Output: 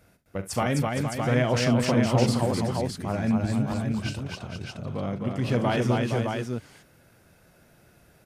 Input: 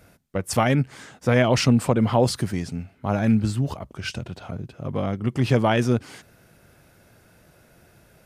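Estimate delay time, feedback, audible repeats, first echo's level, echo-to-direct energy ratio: 41 ms, repeats not evenly spaced, 4, −12.0 dB, 0.5 dB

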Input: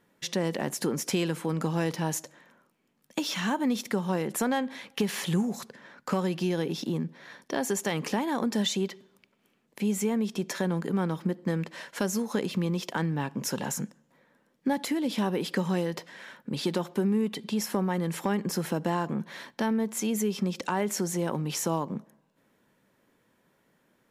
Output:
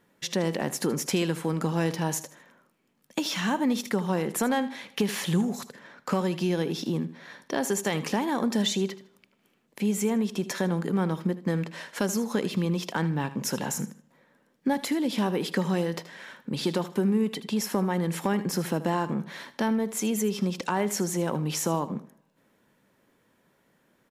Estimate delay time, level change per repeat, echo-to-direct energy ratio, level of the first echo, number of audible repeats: 78 ms, −11.5 dB, −14.5 dB, −15.0 dB, 2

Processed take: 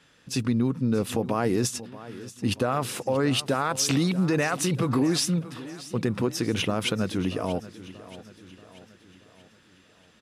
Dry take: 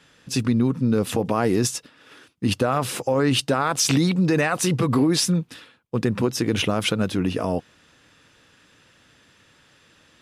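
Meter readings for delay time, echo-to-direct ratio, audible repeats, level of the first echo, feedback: 632 ms, −15.0 dB, 4, −16.5 dB, 51%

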